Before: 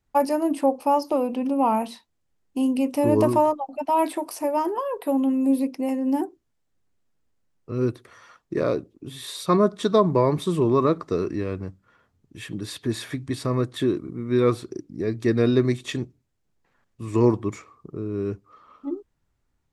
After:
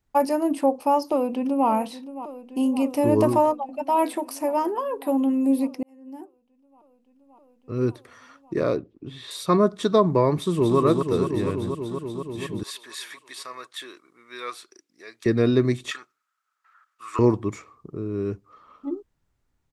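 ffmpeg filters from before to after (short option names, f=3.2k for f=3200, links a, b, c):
-filter_complex "[0:a]asplit=2[a][b];[b]afade=t=in:st=1.08:d=0.01,afade=t=out:st=1.68:d=0.01,aecho=0:1:570|1140|1710|2280|2850|3420|3990|4560|5130|5700|6270|6840:0.199526|0.159621|0.127697|0.102157|0.0817259|0.0653808|0.0523046|0.0418437|0.0334749|0.02678|0.021424|0.0171392[c];[a][c]amix=inputs=2:normalize=0,asettb=1/sr,asplit=3[d][e][f];[d]atrim=end=8.774[g];[e]atrim=start=8.77:end=9.31,asetpts=PTS-STARTPTS,afade=t=in:d=0.004:c=qsin,afade=t=out:st=0.536:d=0.004:c=qsin,lowpass=3.6k[h];[f]atrim=start=9.306[i];[g][h]acrossfade=d=0.004:c1=hsin:c2=qsin[j];[j][i]acrossfade=d=0.004:c1=qsin:c2=hsin,asplit=2[k][l];[l]afade=t=in:st=10.35:d=0.01,afade=t=out:st=10.78:d=0.01,aecho=0:1:240|480|720|960|1200|1440|1680|1920|2160|2400|2640|2880:0.562341|0.47799|0.406292|0.345348|0.293546|0.249514|0.212087|0.180274|0.153233|0.130248|0.110711|0.094104[m];[k][m]amix=inputs=2:normalize=0,asettb=1/sr,asplit=3[n][o][p];[n]atrim=end=12.634[q];[o]atrim=start=12.63:end=15.26,asetpts=PTS-STARTPTS,afade=t=in:d=0.004:c=qsin,afade=t=out:st=2.626:d=0.004:c=qsin,highpass=1.3k[r];[p]atrim=start=15.256[s];[q][r]acrossfade=d=0.004:c1=hsin:c2=qsin[t];[t][s]acrossfade=d=0.004:c1=qsin:c2=hsin,asettb=1/sr,asplit=3[u][v][w];[u]atrim=end=15.914[x];[v]atrim=start=15.91:end=17.19,asetpts=PTS-STARTPTS,afade=t=in:d=0.004:c=qsin,afade=t=out:st=1.276:d=0.004:c=qsin,highpass=f=1.3k:t=q:w=14[y];[w]atrim=start=17.186[z];[x][y]acrossfade=d=0.004:c1=hsin:c2=qsin[aa];[aa][z]acrossfade=d=0.004:c1=qsin:c2=hsin,asplit=2[ab][ac];[ab]atrim=end=5.83,asetpts=PTS-STARTPTS,afade=t=out:st=5.826:d=0.004:c=hsin[ad];[ac]atrim=start=5.83,asetpts=PTS-STARTPTS,afade=t=in:d=2.05[ae];[ad][ae]concat=n=2:v=0:a=1"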